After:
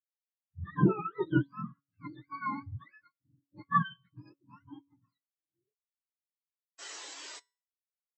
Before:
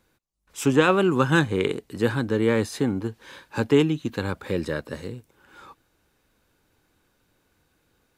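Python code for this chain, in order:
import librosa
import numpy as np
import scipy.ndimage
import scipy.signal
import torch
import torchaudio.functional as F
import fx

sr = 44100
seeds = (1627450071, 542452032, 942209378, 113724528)

y = fx.octave_mirror(x, sr, pivot_hz=700.0)
y = fx.low_shelf(y, sr, hz=490.0, db=4.0)
y = fx.spec_paint(y, sr, seeds[0], shape='noise', start_s=6.78, length_s=0.62, low_hz=270.0, high_hz=8100.0, level_db=-18.0)
y = fx.comb_fb(y, sr, f0_hz=140.0, decay_s=1.0, harmonics='all', damping=0.0, mix_pct=60)
y = fx.spectral_expand(y, sr, expansion=2.5)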